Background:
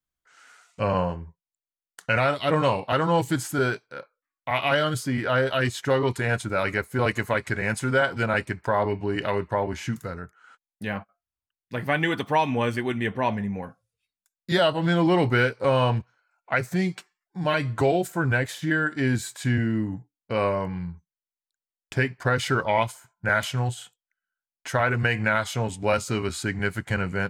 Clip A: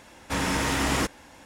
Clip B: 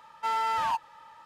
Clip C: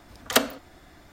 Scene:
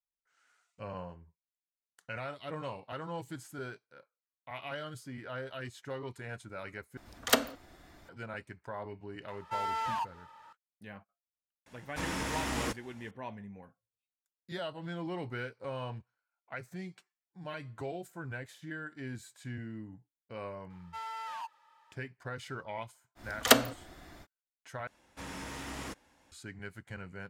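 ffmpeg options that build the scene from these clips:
ffmpeg -i bed.wav -i cue0.wav -i cue1.wav -i cue2.wav -filter_complex "[3:a]asplit=2[link_01][link_02];[2:a]asplit=2[link_03][link_04];[1:a]asplit=2[link_05][link_06];[0:a]volume=-18dB[link_07];[link_03]acompressor=mode=upward:threshold=-43dB:ratio=2.5:attack=3.2:release=140:knee=2.83:detection=peak[link_08];[link_04]highpass=frequency=870:poles=1[link_09];[link_07]asplit=3[link_10][link_11][link_12];[link_10]atrim=end=6.974[link_13];[link_01]atrim=end=1.12,asetpts=PTS-STARTPTS,volume=-5dB[link_14];[link_11]atrim=start=8.086:end=24.874[link_15];[link_06]atrim=end=1.45,asetpts=PTS-STARTPTS,volume=-16.5dB[link_16];[link_12]atrim=start=26.316[link_17];[link_08]atrim=end=1.25,asetpts=PTS-STARTPTS,volume=-6dB,afade=type=in:duration=0.004:curve=hsin,afade=type=out:start_time=1.246:duration=0.004:curve=hsin,adelay=9280[link_18];[link_05]atrim=end=1.45,asetpts=PTS-STARTPTS,volume=-9.5dB,afade=type=in:duration=0.004:curve=hsin,afade=type=out:start_time=1.446:duration=0.004:curve=hsin,adelay=11660[link_19];[link_09]atrim=end=1.25,asetpts=PTS-STARTPTS,volume=-10.5dB,afade=type=in:duration=0.004:curve=hsin,afade=type=out:start_time=1.246:duration=0.004:curve=hsin,adelay=20700[link_20];[link_02]atrim=end=1.12,asetpts=PTS-STARTPTS,volume=-0.5dB,afade=type=in:duration=0.05,afade=type=out:start_time=1.07:duration=0.05,adelay=23150[link_21];[link_13][link_14]acrossfade=duration=0.004:curve1=hsin:curve2=hsin[link_22];[link_22][link_15]acrossfade=duration=0.004:curve1=hsin:curve2=hsin[link_23];[link_23][link_16]acrossfade=duration=0.004:curve1=hsin:curve2=hsin[link_24];[link_24][link_17]acrossfade=duration=0.004:curve1=hsin:curve2=hsin[link_25];[link_25][link_18][link_19][link_20][link_21]amix=inputs=5:normalize=0" out.wav

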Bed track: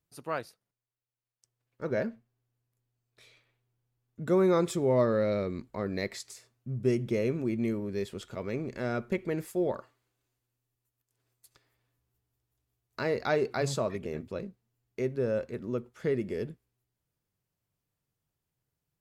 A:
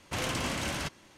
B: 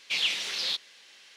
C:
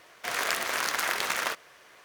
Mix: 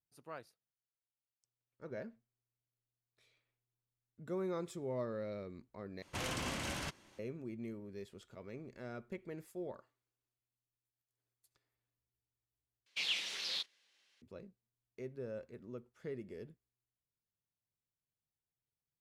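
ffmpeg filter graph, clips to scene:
ffmpeg -i bed.wav -i cue0.wav -i cue1.wav -filter_complex "[0:a]volume=-14.5dB[link_01];[2:a]agate=range=-11dB:threshold=-42dB:ratio=16:release=100:detection=peak[link_02];[link_01]asplit=3[link_03][link_04][link_05];[link_03]atrim=end=6.024[link_06];[1:a]atrim=end=1.17,asetpts=PTS-STARTPTS,volume=-7dB[link_07];[link_04]atrim=start=7.186:end=12.864[link_08];[link_02]atrim=end=1.36,asetpts=PTS-STARTPTS,volume=-9dB[link_09];[link_05]atrim=start=14.216[link_10];[link_06][link_07]acrossfade=duration=0.004:curve1=hsin:curve2=hsin[link_11];[link_11][link_08]acrossfade=duration=0.004:curve1=hsin:curve2=hsin[link_12];[link_12][link_09]acrossfade=duration=0.004:curve1=hsin:curve2=hsin[link_13];[link_13][link_10]acrossfade=duration=0.004:curve1=hsin:curve2=hsin" out.wav

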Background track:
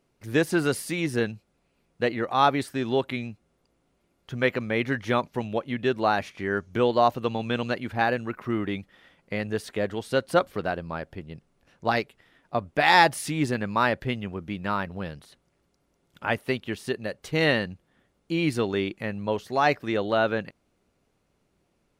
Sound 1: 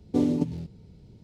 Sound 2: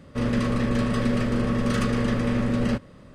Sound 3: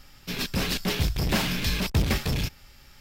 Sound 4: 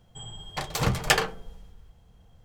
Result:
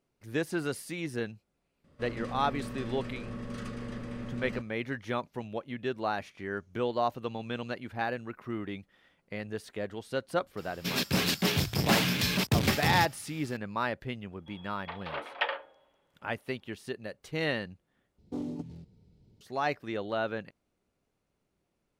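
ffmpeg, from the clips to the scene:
ffmpeg -i bed.wav -i cue0.wav -i cue1.wav -i cue2.wav -i cue3.wav -filter_complex "[0:a]volume=-8.5dB[link_01];[3:a]highpass=frequency=97:width=0.5412,highpass=frequency=97:width=1.3066[link_02];[4:a]highpass=frequency=300:width_type=q:width=0.5412,highpass=frequency=300:width_type=q:width=1.307,lowpass=frequency=3300:width_type=q:width=0.5176,lowpass=frequency=3300:width_type=q:width=0.7071,lowpass=frequency=3300:width_type=q:width=1.932,afreqshift=99[link_03];[1:a]asoftclip=type=tanh:threshold=-16dB[link_04];[link_01]asplit=2[link_05][link_06];[link_05]atrim=end=18.184[link_07];[link_04]atrim=end=1.23,asetpts=PTS-STARTPTS,volume=-11dB[link_08];[link_06]atrim=start=19.406[link_09];[2:a]atrim=end=3.14,asetpts=PTS-STARTPTS,volume=-15.5dB,afade=type=in:duration=0.004:curve=hsin,afade=type=out:start_time=3.136:duration=0.004:curve=hsin,adelay=1840[link_10];[link_02]atrim=end=3,asetpts=PTS-STARTPTS,afade=type=in:duration=0.004:curve=hsin,afade=type=out:start_time=2.996:duration=0.004:curve=hsin,adelay=10570[link_11];[link_03]atrim=end=2.44,asetpts=PTS-STARTPTS,volume=-7.5dB,afade=type=in:duration=0.004:curve=hsin,afade=type=out:start_time=2.436:duration=0.004:curve=hsin,adelay=14310[link_12];[link_07][link_08]acrossfade=duration=0.004:curve1=hsin:curve2=hsin[link_13];[link_13][link_09]acrossfade=duration=0.004:curve1=hsin:curve2=hsin[link_14];[link_14][link_10][link_11][link_12]amix=inputs=4:normalize=0" out.wav

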